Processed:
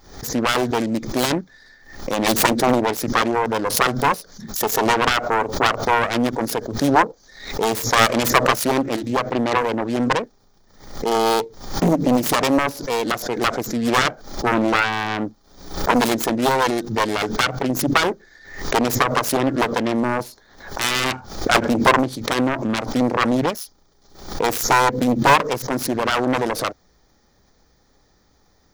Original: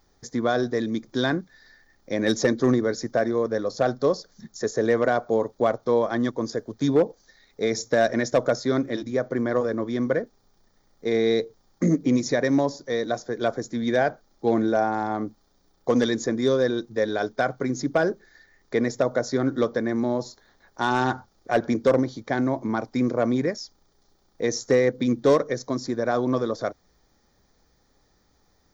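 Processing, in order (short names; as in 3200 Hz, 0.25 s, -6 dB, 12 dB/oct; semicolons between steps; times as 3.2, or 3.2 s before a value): self-modulated delay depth 0.78 ms; backwards sustainer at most 92 dB/s; gain +5 dB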